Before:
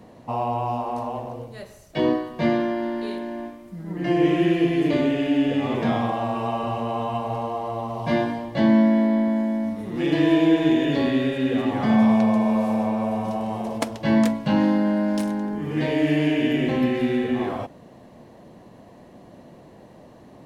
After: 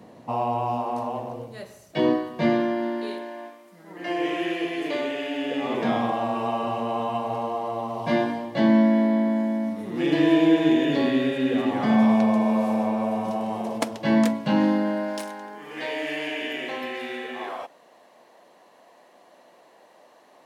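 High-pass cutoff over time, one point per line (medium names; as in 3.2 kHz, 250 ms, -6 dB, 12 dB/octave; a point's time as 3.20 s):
2.75 s 120 Hz
3.33 s 530 Hz
5.37 s 530 Hz
5.98 s 170 Hz
14.64 s 170 Hz
15.33 s 690 Hz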